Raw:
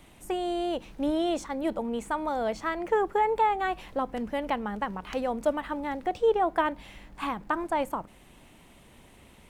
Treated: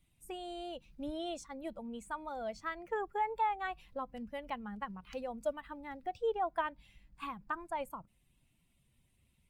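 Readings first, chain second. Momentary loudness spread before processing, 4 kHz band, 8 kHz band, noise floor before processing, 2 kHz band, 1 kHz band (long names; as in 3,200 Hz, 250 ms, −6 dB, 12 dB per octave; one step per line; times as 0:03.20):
9 LU, −9.0 dB, can't be measured, −55 dBFS, −8.5 dB, −9.0 dB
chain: spectral dynamics exaggerated over time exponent 1.5
dynamic equaliser 330 Hz, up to −7 dB, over −43 dBFS, Q 1.5
level −6 dB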